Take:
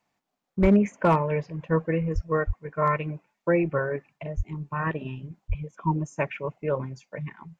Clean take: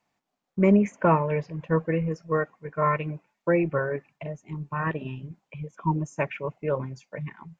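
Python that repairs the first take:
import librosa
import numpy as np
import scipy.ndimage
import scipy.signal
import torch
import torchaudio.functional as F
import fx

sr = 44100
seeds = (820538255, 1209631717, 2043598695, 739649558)

y = fx.fix_declip(x, sr, threshold_db=-11.0)
y = fx.fix_deplosive(y, sr, at_s=(0.61, 2.14, 2.46, 4.36, 5.48))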